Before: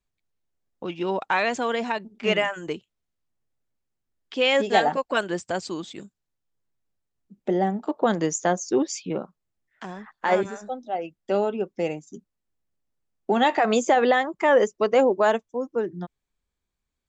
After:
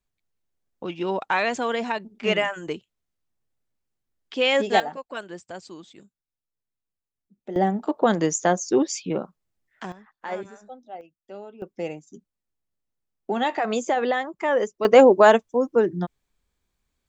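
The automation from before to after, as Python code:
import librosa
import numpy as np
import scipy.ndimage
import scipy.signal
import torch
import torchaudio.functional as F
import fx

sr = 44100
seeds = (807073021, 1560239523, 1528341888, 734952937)

y = fx.gain(x, sr, db=fx.steps((0.0, 0.0), (4.8, -10.0), (7.56, 2.0), (9.92, -10.0), (11.01, -16.5), (11.62, -4.0), (14.85, 6.5)))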